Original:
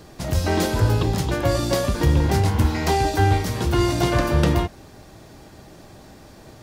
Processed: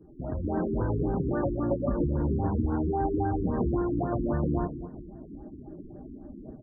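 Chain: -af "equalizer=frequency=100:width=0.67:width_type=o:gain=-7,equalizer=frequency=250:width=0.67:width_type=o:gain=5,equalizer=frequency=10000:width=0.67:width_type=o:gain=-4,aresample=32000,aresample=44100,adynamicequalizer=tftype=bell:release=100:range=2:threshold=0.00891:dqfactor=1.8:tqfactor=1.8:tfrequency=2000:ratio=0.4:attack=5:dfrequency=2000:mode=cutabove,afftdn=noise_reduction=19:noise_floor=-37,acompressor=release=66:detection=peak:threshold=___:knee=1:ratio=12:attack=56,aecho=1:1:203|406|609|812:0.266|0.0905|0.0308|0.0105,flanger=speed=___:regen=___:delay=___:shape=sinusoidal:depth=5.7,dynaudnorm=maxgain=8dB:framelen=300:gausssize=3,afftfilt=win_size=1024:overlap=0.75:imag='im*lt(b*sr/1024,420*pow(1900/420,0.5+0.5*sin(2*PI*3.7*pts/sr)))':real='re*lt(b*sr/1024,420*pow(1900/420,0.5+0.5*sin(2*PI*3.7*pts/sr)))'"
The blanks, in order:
-33dB, 0.34, -69, 2.2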